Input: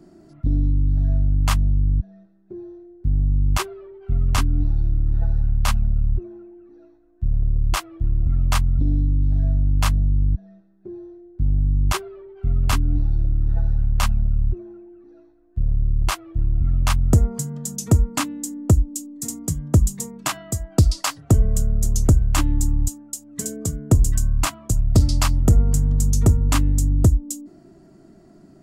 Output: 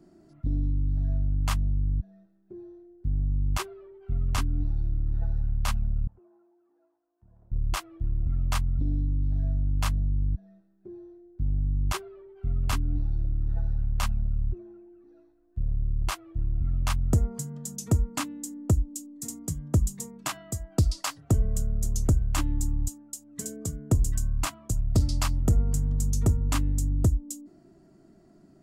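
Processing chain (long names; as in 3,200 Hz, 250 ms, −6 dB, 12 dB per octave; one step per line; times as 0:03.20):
0:06.07–0:07.52: resonant band-pass 930 Hz, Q 2.2
level −7.5 dB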